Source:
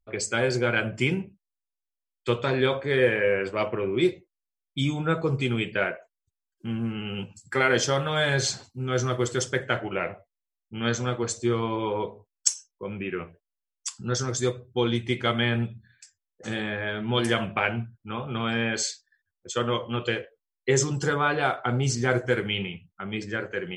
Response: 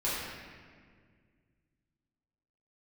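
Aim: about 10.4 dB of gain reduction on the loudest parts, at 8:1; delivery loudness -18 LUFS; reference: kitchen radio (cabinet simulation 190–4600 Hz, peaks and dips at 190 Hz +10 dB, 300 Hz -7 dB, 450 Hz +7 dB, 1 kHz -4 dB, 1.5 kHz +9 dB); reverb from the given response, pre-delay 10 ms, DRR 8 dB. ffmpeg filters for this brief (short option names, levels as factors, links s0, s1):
-filter_complex "[0:a]acompressor=threshold=0.0447:ratio=8,asplit=2[s0][s1];[1:a]atrim=start_sample=2205,adelay=10[s2];[s1][s2]afir=irnorm=-1:irlink=0,volume=0.15[s3];[s0][s3]amix=inputs=2:normalize=0,highpass=190,equalizer=f=190:t=q:w=4:g=10,equalizer=f=300:t=q:w=4:g=-7,equalizer=f=450:t=q:w=4:g=7,equalizer=f=1000:t=q:w=4:g=-4,equalizer=f=1500:t=q:w=4:g=9,lowpass=f=4600:w=0.5412,lowpass=f=4600:w=1.3066,volume=3.98"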